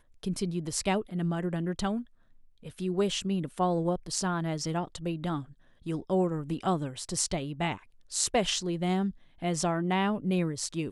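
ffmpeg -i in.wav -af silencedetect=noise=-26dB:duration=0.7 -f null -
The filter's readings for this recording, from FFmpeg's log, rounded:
silence_start: 1.97
silence_end: 2.82 | silence_duration: 0.85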